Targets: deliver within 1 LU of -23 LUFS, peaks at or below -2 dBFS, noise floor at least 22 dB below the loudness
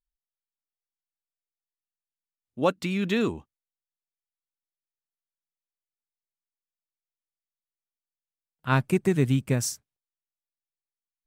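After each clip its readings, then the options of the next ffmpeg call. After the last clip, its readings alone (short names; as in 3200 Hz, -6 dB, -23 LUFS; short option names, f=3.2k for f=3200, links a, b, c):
loudness -26.0 LUFS; peak -9.5 dBFS; loudness target -23.0 LUFS
-> -af "volume=3dB"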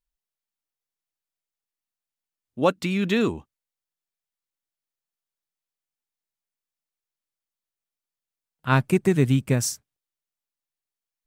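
loudness -23.0 LUFS; peak -6.5 dBFS; noise floor -91 dBFS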